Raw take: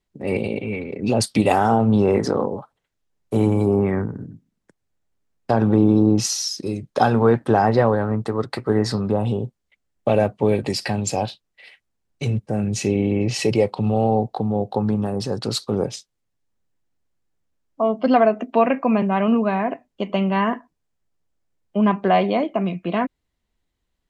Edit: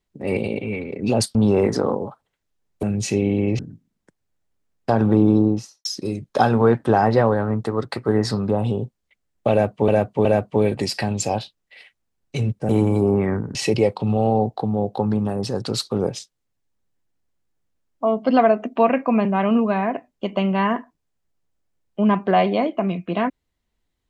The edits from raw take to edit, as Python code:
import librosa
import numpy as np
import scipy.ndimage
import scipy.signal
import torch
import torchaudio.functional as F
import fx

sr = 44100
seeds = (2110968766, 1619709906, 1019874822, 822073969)

y = fx.studio_fade_out(x, sr, start_s=5.92, length_s=0.54)
y = fx.edit(y, sr, fx.cut(start_s=1.35, length_s=0.51),
    fx.swap(start_s=3.34, length_s=0.86, other_s=12.56, other_length_s=0.76),
    fx.repeat(start_s=10.12, length_s=0.37, count=3), tone=tone)